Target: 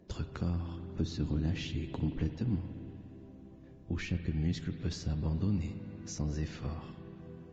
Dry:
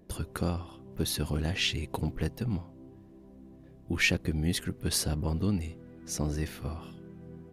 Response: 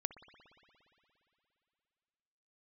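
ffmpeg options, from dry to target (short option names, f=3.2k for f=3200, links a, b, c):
-filter_complex "[0:a]asettb=1/sr,asplit=3[a][b][c];[a]atrim=end=0.564[d];[b]atrim=start=0.56:end=2.55,asetpts=PTS-STARTPTS,afade=t=in:d=0.004:c=qsin,afade=t=out:st=1.986:d=0.004:c=qsin,equalizer=f=290:w=2.4:g=9[e];[c]atrim=start=2.546[f];[d][e]acrossfade=d=0.004:c1=hsin:c2=qsin[g];[g][f]acrossfade=d=0.004:c1=qsin:c2=hsin,acrossover=split=250[h][i];[i]acompressor=threshold=-40dB:ratio=10[j];[h][j]amix=inputs=2:normalize=0,asettb=1/sr,asplit=3[k][l][m];[k]atrim=end=6.744[n];[l]atrim=start=6.74:end=7.17,asetpts=PTS-STARTPTS,afade=t=in:d=0.004:c=qsin,afade=t=out:st=0.426:d=0.004:c=qsin,highshelf=f=2k:g=-4.5[o];[m]atrim=start=7.166[p];[n][o]acrossfade=d=0.004:c1=hsin:c2=qsin[q];[q][p]acrossfade=d=0.004:c1=qsin:c2=hsin[r];[1:a]atrim=start_sample=2205[s];[r][s]afir=irnorm=-1:irlink=0" -ar 16000 -c:a libvorbis -b:a 32k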